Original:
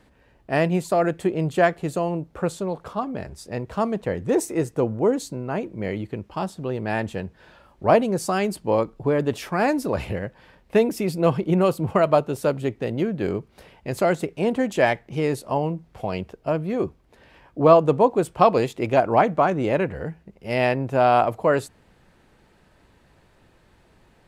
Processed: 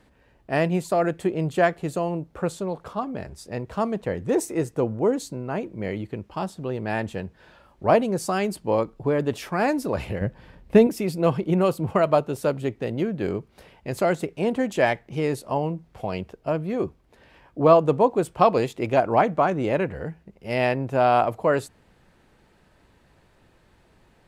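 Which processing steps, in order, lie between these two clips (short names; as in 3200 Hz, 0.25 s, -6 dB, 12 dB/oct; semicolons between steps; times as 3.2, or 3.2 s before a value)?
10.21–10.87 low shelf 300 Hz +12 dB; gain -1.5 dB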